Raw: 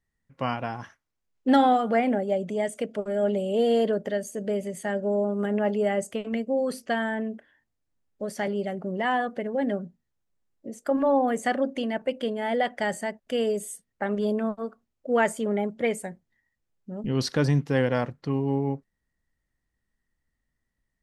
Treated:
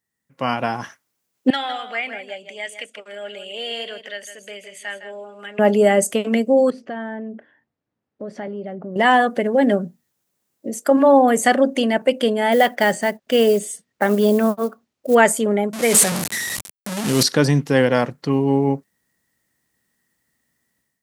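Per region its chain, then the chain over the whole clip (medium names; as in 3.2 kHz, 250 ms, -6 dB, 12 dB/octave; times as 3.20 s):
1.50–5.59 s: band-pass filter 2.6 kHz, Q 2.2 + delay 159 ms -10.5 dB
6.70–8.96 s: tape spacing loss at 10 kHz 37 dB + compression 2.5:1, threshold -42 dBFS
12.52–15.15 s: low-pass 5.1 kHz + short-mantissa float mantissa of 4-bit
15.73–17.23 s: one-bit delta coder 64 kbps, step -29 dBFS + decay stretcher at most 23 dB/s
whole clip: high-pass 150 Hz; treble shelf 6.4 kHz +11.5 dB; level rider gain up to 11 dB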